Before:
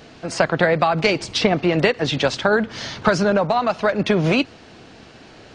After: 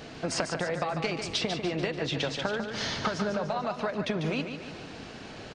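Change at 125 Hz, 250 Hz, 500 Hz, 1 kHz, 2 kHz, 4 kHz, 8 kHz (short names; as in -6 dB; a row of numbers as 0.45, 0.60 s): -10.5, -11.5, -12.5, -12.0, -12.0, -7.5, -5.0 dB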